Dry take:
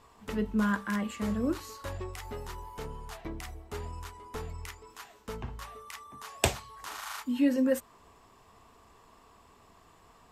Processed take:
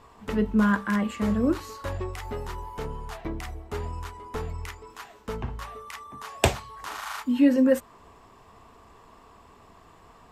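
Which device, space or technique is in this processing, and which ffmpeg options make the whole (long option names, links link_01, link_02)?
behind a face mask: -af "highshelf=frequency=3500:gain=-7,volume=6.5dB"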